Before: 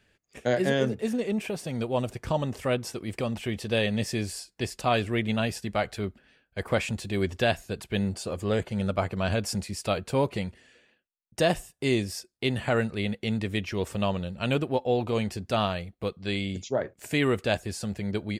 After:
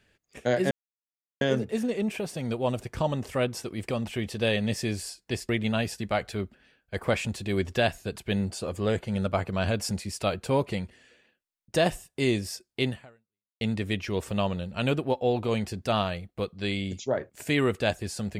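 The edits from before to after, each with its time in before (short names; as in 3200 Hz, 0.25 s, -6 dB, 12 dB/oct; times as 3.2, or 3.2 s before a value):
0.71 insert silence 0.70 s
4.79–5.13 cut
12.53–13.25 fade out exponential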